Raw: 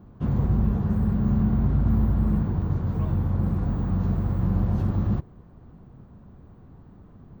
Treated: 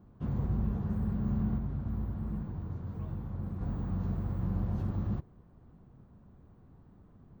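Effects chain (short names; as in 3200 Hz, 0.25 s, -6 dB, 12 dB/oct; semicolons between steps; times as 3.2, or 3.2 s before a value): 1.58–3.61 flange 1.2 Hz, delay 4.8 ms, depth 7.7 ms, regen -67%; gain -9 dB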